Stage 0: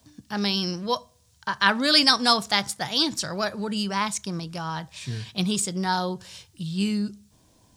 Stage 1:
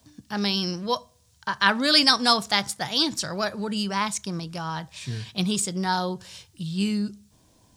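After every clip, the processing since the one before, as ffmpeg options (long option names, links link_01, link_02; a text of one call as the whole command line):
ffmpeg -i in.wav -af anull out.wav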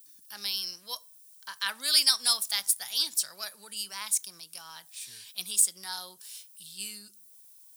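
ffmpeg -i in.wav -filter_complex "[0:a]aderivative,acrossover=split=240|2100[link_01][link_02][link_03];[link_03]aexciter=amount=4.3:drive=2.9:freq=9200[link_04];[link_01][link_02][link_04]amix=inputs=3:normalize=0" out.wav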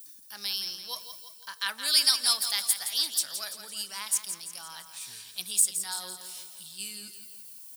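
ffmpeg -i in.wav -af "areverse,acompressor=mode=upward:threshold=-38dB:ratio=2.5,areverse,aecho=1:1:169|338|507|676|845|1014:0.335|0.174|0.0906|0.0471|0.0245|0.0127" out.wav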